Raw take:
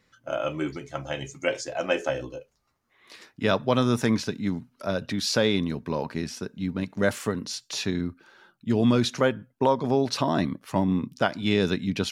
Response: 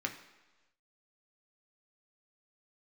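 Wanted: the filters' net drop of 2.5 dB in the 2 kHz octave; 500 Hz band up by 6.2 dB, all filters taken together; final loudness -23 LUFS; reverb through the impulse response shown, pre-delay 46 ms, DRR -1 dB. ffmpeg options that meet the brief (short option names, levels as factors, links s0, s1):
-filter_complex "[0:a]equalizer=f=500:t=o:g=7.5,equalizer=f=2000:t=o:g=-4,asplit=2[s0][s1];[1:a]atrim=start_sample=2205,adelay=46[s2];[s1][s2]afir=irnorm=-1:irlink=0,volume=0.75[s3];[s0][s3]amix=inputs=2:normalize=0,volume=0.75"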